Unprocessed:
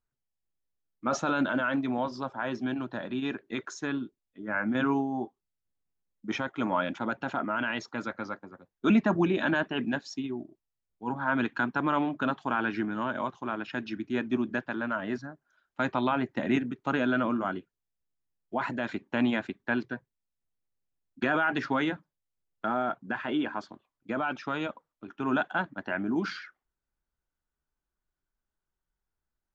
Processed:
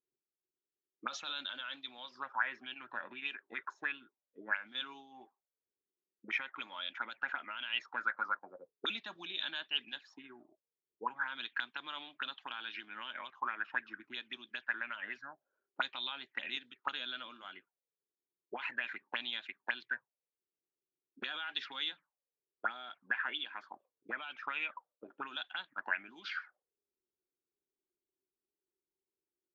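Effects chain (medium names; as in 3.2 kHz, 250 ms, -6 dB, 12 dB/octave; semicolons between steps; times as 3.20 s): band-stop 660 Hz, Q 12; auto-wah 370–3600 Hz, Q 6.5, up, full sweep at -26 dBFS; trim +8 dB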